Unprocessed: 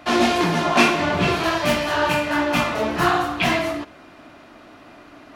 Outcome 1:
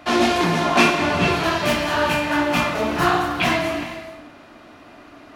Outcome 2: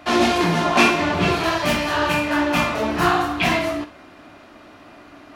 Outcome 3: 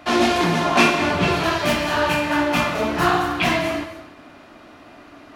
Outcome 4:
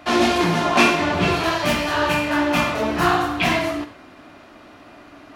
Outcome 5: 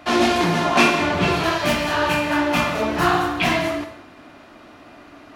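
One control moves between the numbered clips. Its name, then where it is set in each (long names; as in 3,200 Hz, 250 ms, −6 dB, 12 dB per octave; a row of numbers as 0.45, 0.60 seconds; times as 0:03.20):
reverb whose tail is shaped and stops, gate: 480, 80, 320, 130, 220 milliseconds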